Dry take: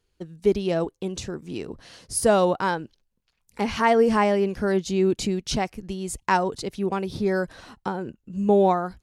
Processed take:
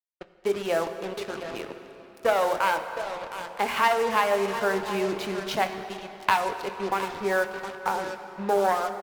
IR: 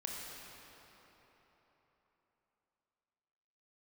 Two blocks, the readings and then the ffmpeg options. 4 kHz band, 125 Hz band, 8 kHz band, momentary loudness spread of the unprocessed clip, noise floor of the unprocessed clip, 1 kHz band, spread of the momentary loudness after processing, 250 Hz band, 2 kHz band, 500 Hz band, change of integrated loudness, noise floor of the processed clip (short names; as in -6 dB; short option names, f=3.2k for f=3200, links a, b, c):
0.0 dB, -12.0 dB, -7.5 dB, 14 LU, -74 dBFS, +0.5 dB, 12 LU, -10.0 dB, +2.5 dB, -3.5 dB, -3.0 dB, -51 dBFS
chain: -filter_complex "[0:a]acrossover=split=540 3100:gain=0.2 1 0.2[a][b][c];[a][b][c]amix=inputs=3:normalize=0,aeval=exprs='0.376*(cos(1*acos(clip(val(0)/0.376,-1,1)))-cos(1*PI/2))+0.119*(cos(2*acos(clip(val(0)/0.376,-1,1)))-cos(2*PI/2))+0.015*(cos(3*acos(clip(val(0)/0.376,-1,1)))-cos(3*PI/2))+0.0299*(cos(6*acos(clip(val(0)/0.376,-1,1)))-cos(6*PI/2))+0.0237*(cos(8*acos(clip(val(0)/0.376,-1,1)))-cos(8*PI/2))':c=same,adynamicsmooth=sensitivity=7:basefreq=2.8k,asplit=2[d][e];[e]adelay=25,volume=-12.5dB[f];[d][f]amix=inputs=2:normalize=0,acompressor=threshold=-27dB:ratio=3,highpass=f=250:p=1,bandreject=f=60:t=h:w=6,bandreject=f=120:t=h:w=6,bandreject=f=180:t=h:w=6,bandreject=f=240:t=h:w=6,bandreject=f=300:t=h:w=6,bandreject=f=360:t=h:w=6,bandreject=f=420:t=h:w=6,bandreject=f=480:t=h:w=6,aecho=1:1:714:0.237,acrusher=bits=6:mix=0:aa=0.5,asplit=2[g][h];[1:a]atrim=start_sample=2205[i];[h][i]afir=irnorm=-1:irlink=0,volume=-4dB[j];[g][j]amix=inputs=2:normalize=0,volume=4.5dB" -ar 48000 -c:a libvorbis -b:a 96k